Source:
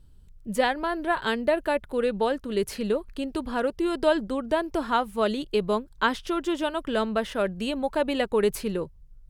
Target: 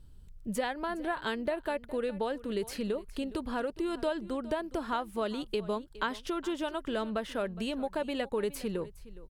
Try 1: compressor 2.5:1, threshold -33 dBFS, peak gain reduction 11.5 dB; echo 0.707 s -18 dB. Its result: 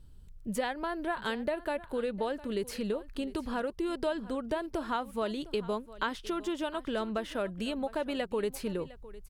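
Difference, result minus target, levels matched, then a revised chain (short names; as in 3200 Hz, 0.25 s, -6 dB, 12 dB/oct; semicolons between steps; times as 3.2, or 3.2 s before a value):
echo 0.293 s late
compressor 2.5:1, threshold -33 dBFS, peak gain reduction 11.5 dB; echo 0.414 s -18 dB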